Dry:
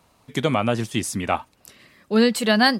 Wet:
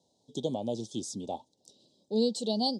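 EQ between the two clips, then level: elliptic band-stop 770–3700 Hz, stop band 50 dB; speaker cabinet 110–7100 Hz, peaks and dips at 700 Hz -9 dB, 1200 Hz -6 dB, 1800 Hz -8 dB, 2600 Hz -7 dB, 4400 Hz -4 dB; low shelf 230 Hz -12 dB; -4.0 dB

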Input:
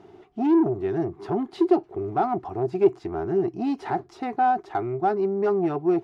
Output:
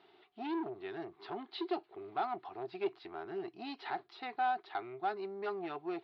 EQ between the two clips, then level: band-pass 4100 Hz, Q 3.4; air absorption 420 m; +15.0 dB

